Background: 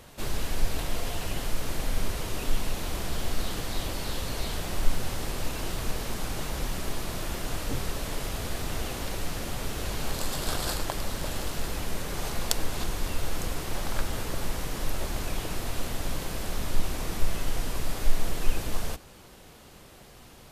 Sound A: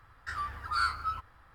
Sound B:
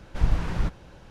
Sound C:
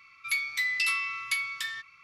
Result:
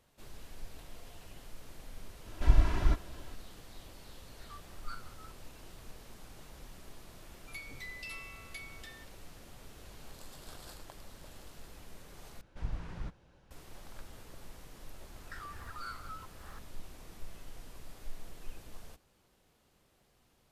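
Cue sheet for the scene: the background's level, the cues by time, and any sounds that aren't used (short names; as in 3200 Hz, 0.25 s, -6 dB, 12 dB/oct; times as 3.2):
background -19.5 dB
2.26 add B -4 dB + comb 3 ms, depth 67%
4.13 add A -16 dB + chopper 5.4 Hz, depth 65%, duty 40%
7.23 add C -17.5 dB
12.41 replace with B -15 dB
15.05 add A -15 dB + recorder AGC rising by 65 dB/s, up to +22 dB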